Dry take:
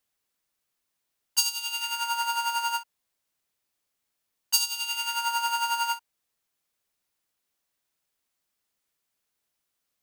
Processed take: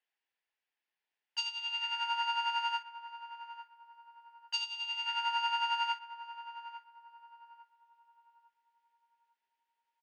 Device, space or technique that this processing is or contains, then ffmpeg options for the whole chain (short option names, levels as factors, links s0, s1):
phone earpiece: -filter_complex "[0:a]asettb=1/sr,asplit=3[s0][s1][s2];[s0]atrim=end=4.644[s3];[s1]atrim=start=4.64:end=5.06,asetpts=PTS-STARTPTS,afade=t=in:d=0.004:c=qsin,afade=t=out:st=0.416:d=0.004:c=qsin,equalizer=f=1600:w=1.1:g=-5.5[s4];[s2]atrim=start=5.056[s5];[s3][s4]acrossfade=d=0.004:c1=hsin:c2=qsin[s6];[s6][s5]acrossfade=d=0.004:c1=qsin:c2=hsin,highpass=470,equalizer=f=590:t=q:w=4:g=-5,equalizer=f=850:t=q:w=4:g=4,equalizer=f=1200:t=q:w=4:g=-8,equalizer=f=1800:t=q:w=4:g=6,equalizer=f=2700:t=q:w=4:g=3,equalizer=f=4000:t=q:w=4:g=-5,lowpass=f=4200:w=0.5412,lowpass=f=4200:w=1.3066,asplit=2[s7][s8];[s8]adelay=851,lowpass=f=840:p=1,volume=0.376,asplit=2[s9][s10];[s10]adelay=851,lowpass=f=840:p=1,volume=0.5,asplit=2[s11][s12];[s12]adelay=851,lowpass=f=840:p=1,volume=0.5,asplit=2[s13][s14];[s14]adelay=851,lowpass=f=840:p=1,volume=0.5,asplit=2[s15][s16];[s16]adelay=851,lowpass=f=840:p=1,volume=0.5,asplit=2[s17][s18];[s18]adelay=851,lowpass=f=840:p=1,volume=0.5[s19];[s7][s9][s11][s13][s15][s17][s19]amix=inputs=7:normalize=0,volume=0.562"